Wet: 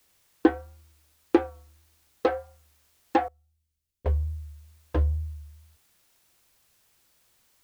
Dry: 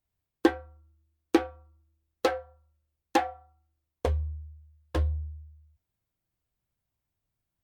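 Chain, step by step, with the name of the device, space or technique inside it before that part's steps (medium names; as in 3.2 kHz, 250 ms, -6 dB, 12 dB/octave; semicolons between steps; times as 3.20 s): cassette deck with a dirty head (tape spacing loss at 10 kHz 29 dB; wow and flutter; white noise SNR 35 dB); 3.28–4.06 s: amplifier tone stack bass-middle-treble 10-0-1; trim +3.5 dB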